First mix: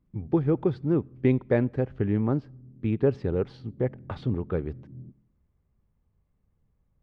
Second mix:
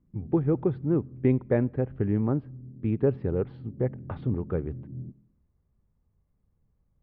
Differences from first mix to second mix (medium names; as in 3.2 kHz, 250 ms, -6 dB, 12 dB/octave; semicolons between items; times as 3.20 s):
background +5.5 dB; master: add distance through air 470 m